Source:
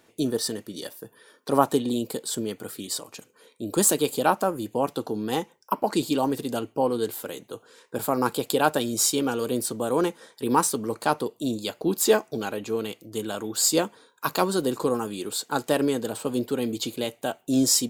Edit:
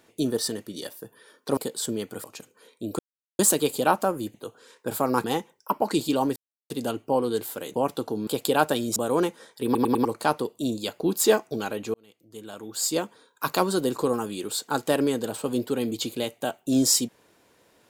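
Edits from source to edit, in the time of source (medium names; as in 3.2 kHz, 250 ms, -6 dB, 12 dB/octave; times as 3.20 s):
1.57–2.06 s: delete
2.73–3.03 s: delete
3.78 s: insert silence 0.40 s
4.73–5.26 s: swap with 7.42–8.32 s
6.38 s: insert silence 0.34 s
9.01–9.77 s: delete
10.46 s: stutter in place 0.10 s, 4 plays
12.75–14.33 s: fade in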